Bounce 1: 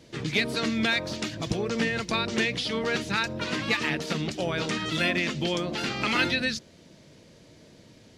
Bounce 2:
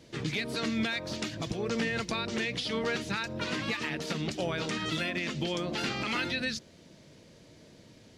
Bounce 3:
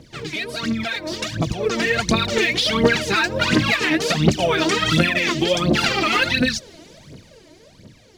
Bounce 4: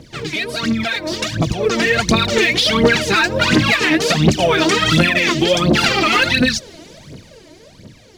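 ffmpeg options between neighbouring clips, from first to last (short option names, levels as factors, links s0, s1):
-af "alimiter=limit=0.112:level=0:latency=1:release=172,volume=0.794"
-filter_complex "[0:a]dynaudnorm=f=200:g=17:m=3.98,aphaser=in_gain=1:out_gain=1:delay=3.3:decay=0.75:speed=1.4:type=triangular,asplit=2[s0][s1];[s1]acompressor=threshold=0.0562:ratio=6,volume=1.19[s2];[s0][s2]amix=inputs=2:normalize=0,volume=0.631"
-af "asoftclip=type=tanh:threshold=0.398,volume=1.78"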